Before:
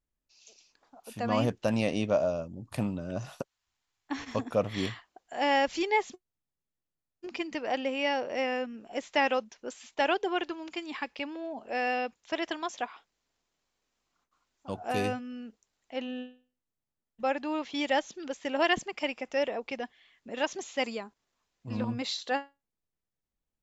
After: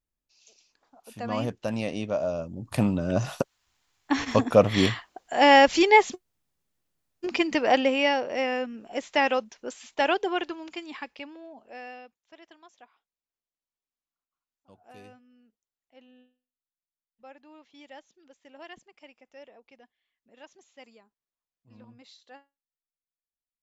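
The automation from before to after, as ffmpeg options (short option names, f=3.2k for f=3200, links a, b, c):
-af "volume=10dB,afade=t=in:st=2.17:d=1.01:silence=0.251189,afade=t=out:st=7.72:d=0.5:silence=0.446684,afade=t=out:st=10.2:d=1.21:silence=0.316228,afade=t=out:st=11.41:d=0.78:silence=0.237137"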